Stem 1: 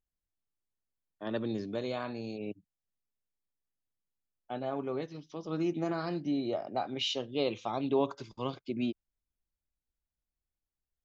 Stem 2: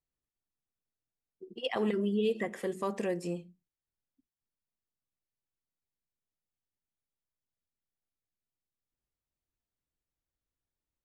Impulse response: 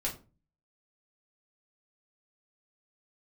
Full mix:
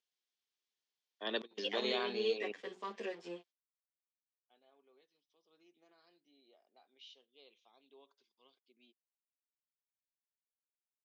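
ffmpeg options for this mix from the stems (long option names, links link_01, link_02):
-filter_complex "[0:a]highshelf=frequency=3400:gain=9,volume=2dB[link_01];[1:a]highpass=frequency=130:width=0.5412,highpass=frequency=130:width=1.3066,aeval=exprs='sgn(val(0))*max(abs(val(0))-0.00398,0)':channel_layout=same,asplit=2[link_02][link_03];[link_03]adelay=10.2,afreqshift=1.6[link_04];[link_02][link_04]amix=inputs=2:normalize=1,volume=0dB,asplit=2[link_05][link_06];[link_06]apad=whole_len=487126[link_07];[link_01][link_07]sidechaingate=range=-32dB:threshold=-54dB:ratio=16:detection=peak[link_08];[link_08][link_05]amix=inputs=2:normalize=0,highpass=frequency=300:width=0.5412,highpass=frequency=300:width=1.3066,equalizer=frequency=310:width_type=q:width=4:gain=-10,equalizer=frequency=590:width_type=q:width=4:gain=-7,equalizer=frequency=850:width_type=q:width=4:gain=-4,equalizer=frequency=1300:width_type=q:width=4:gain=-6,equalizer=frequency=3300:width_type=q:width=4:gain=5,lowpass=frequency=5800:width=0.5412,lowpass=frequency=5800:width=1.3066"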